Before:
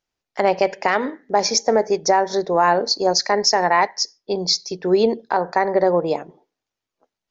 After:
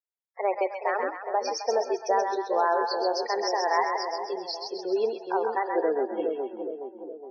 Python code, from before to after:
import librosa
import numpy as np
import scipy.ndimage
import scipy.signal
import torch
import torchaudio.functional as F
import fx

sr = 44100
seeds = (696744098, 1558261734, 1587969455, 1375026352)

y = fx.tape_stop_end(x, sr, length_s=1.68)
y = fx.noise_reduce_blind(y, sr, reduce_db=12)
y = scipy.signal.sosfilt(scipy.signal.butter(4, 360.0, 'highpass', fs=sr, output='sos'), y)
y = fx.high_shelf(y, sr, hz=3800.0, db=-11.0)
y = fx.spec_topn(y, sr, count=32)
y = fx.vibrato(y, sr, rate_hz=2.9, depth_cents=40.0)
y = fx.echo_split(y, sr, split_hz=730.0, low_ms=417, high_ms=131, feedback_pct=52, wet_db=-4.0)
y = F.gain(torch.from_numpy(y), -7.5).numpy()